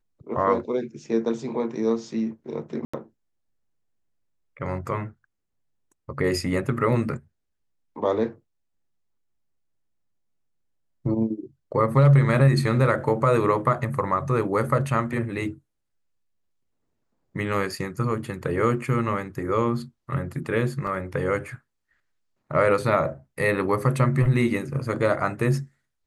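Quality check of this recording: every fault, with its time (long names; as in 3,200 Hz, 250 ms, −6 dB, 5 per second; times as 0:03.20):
0:02.85–0:02.94: drop-out 85 ms
0:20.87: drop-out 2.9 ms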